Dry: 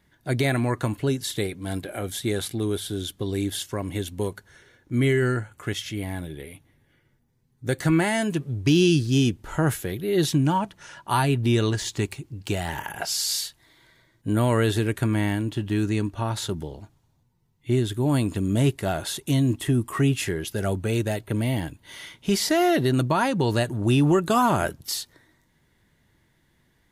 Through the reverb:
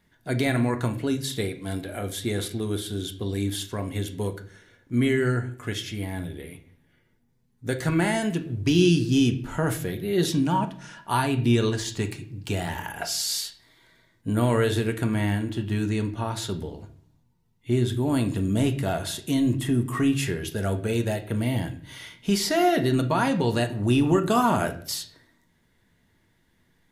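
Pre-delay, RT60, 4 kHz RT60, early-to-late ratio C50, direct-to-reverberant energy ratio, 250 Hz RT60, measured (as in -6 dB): 4 ms, 0.50 s, 0.40 s, 13.0 dB, 6.0 dB, 0.75 s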